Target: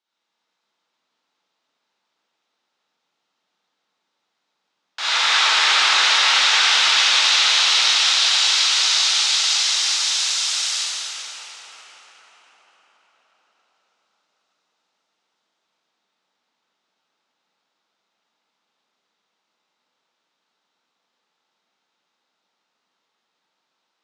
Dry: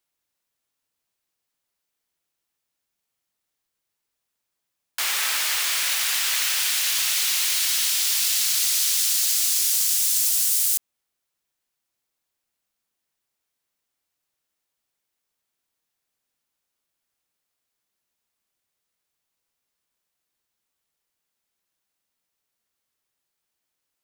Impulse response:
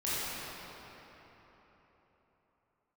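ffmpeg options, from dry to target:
-filter_complex "[0:a]highpass=f=180:w=0.5412,highpass=f=180:w=1.3066,equalizer=f=860:t=q:w=4:g=7,equalizer=f=1.3k:t=q:w=4:g=4,equalizer=f=3.7k:t=q:w=4:g=6,lowpass=f=5.9k:w=0.5412,lowpass=f=5.9k:w=1.3066[a];[1:a]atrim=start_sample=2205,asetrate=23814,aresample=44100[b];[a][b]afir=irnorm=-1:irlink=0,volume=-3dB"

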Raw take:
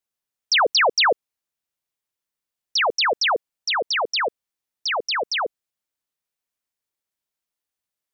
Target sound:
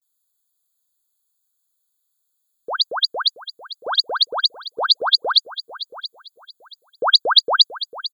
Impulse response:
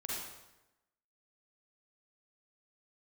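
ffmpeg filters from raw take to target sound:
-filter_complex "[0:a]areverse,crystalizer=i=9.5:c=0,asplit=2[a][b];[b]aecho=0:1:678|1356|2034:0.178|0.0427|0.0102[c];[a][c]amix=inputs=2:normalize=0,afftfilt=real='re*eq(mod(floor(b*sr/1024/1600),2),0)':imag='im*eq(mod(floor(b*sr/1024/1600),2),0)':win_size=1024:overlap=0.75,volume=-5.5dB"

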